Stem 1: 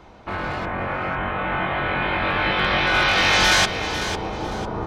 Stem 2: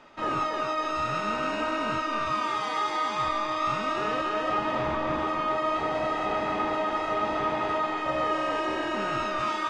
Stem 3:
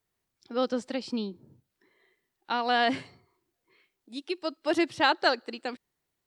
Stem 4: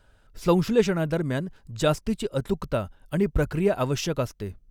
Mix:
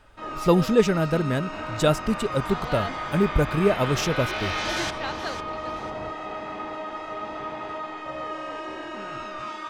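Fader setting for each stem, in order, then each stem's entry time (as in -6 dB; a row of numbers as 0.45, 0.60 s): -12.5, -6.0, -10.0, +2.0 dB; 1.25, 0.00, 0.00, 0.00 s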